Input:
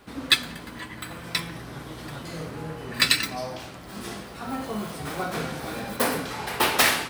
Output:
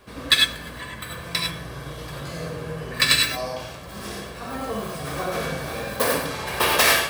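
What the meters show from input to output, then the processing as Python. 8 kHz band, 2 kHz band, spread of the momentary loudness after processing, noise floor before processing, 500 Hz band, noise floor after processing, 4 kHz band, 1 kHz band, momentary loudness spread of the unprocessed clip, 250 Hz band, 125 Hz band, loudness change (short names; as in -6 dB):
+3.5 dB, +3.5 dB, 17 LU, -41 dBFS, +4.5 dB, -38 dBFS, +4.0 dB, +2.0 dB, 17 LU, -0.5 dB, +3.5 dB, +3.5 dB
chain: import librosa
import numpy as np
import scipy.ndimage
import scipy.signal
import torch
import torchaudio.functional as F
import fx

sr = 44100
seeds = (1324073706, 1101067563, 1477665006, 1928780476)

y = x + 0.43 * np.pad(x, (int(1.8 * sr / 1000.0), 0))[:len(x)]
y = fx.rev_gated(y, sr, seeds[0], gate_ms=120, shape='rising', drr_db=1.0)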